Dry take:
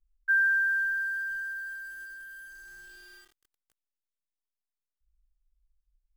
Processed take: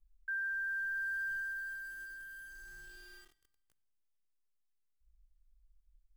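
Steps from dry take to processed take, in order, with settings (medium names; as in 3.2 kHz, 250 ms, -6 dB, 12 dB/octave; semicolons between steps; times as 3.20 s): bass shelf 220 Hz +8 dB; peak limiter -29.5 dBFS, peak gain reduction 11 dB; on a send: tone controls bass +9 dB, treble 0 dB + reverberation RT60 1.1 s, pre-delay 29 ms, DRR 20 dB; on the sum: trim -3.5 dB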